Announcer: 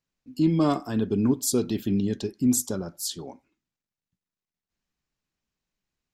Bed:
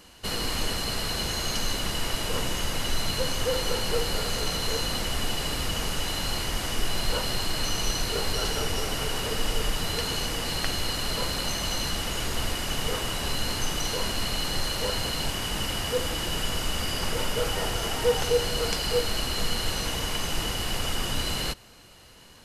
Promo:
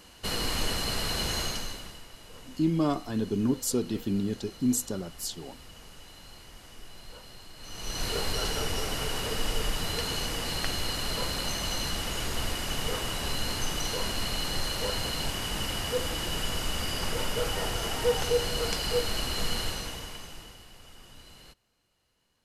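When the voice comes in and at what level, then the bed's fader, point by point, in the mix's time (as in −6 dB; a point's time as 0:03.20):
2.20 s, −4.0 dB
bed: 0:01.41 −1 dB
0:02.07 −20 dB
0:07.56 −20 dB
0:08.05 −2.5 dB
0:19.60 −2.5 dB
0:20.71 −22.5 dB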